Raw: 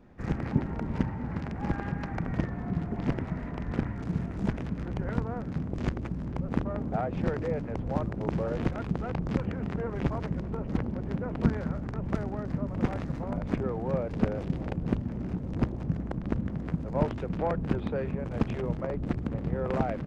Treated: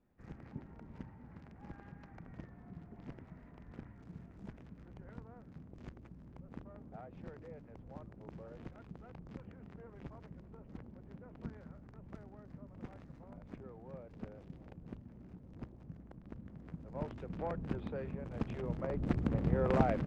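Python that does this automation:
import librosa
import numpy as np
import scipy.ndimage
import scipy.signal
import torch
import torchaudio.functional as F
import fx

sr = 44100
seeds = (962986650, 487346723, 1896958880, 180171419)

y = fx.gain(x, sr, db=fx.line((16.3, -20.0), (17.44, -10.0), (18.46, -10.0), (19.27, -1.0)))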